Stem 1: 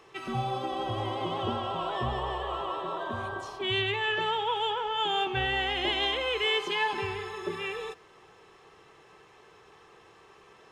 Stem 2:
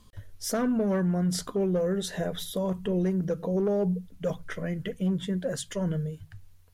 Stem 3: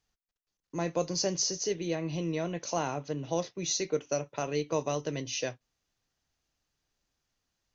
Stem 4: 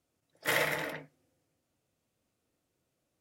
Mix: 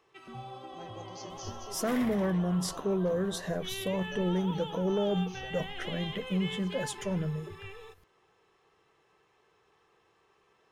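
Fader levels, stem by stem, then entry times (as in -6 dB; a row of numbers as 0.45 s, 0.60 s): -12.5 dB, -3.0 dB, -18.0 dB, -13.0 dB; 0.00 s, 1.30 s, 0.00 s, 1.40 s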